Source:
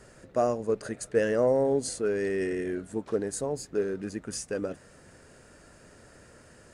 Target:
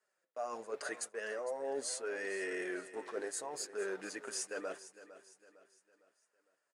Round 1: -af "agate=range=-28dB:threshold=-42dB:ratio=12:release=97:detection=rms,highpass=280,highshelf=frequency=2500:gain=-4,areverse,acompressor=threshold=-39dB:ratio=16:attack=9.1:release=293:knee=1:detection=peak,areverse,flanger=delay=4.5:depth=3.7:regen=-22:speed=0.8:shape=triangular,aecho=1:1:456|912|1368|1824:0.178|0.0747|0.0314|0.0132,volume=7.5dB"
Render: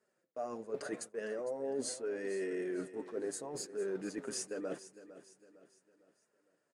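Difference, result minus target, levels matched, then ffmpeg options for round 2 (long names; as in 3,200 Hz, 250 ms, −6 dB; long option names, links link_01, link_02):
250 Hz band +5.5 dB
-af "agate=range=-28dB:threshold=-42dB:ratio=12:release=97:detection=rms,highpass=780,highshelf=frequency=2500:gain=-4,areverse,acompressor=threshold=-39dB:ratio=16:attack=9.1:release=293:knee=1:detection=peak,areverse,flanger=delay=4.5:depth=3.7:regen=-22:speed=0.8:shape=triangular,aecho=1:1:456|912|1368|1824:0.178|0.0747|0.0314|0.0132,volume=7.5dB"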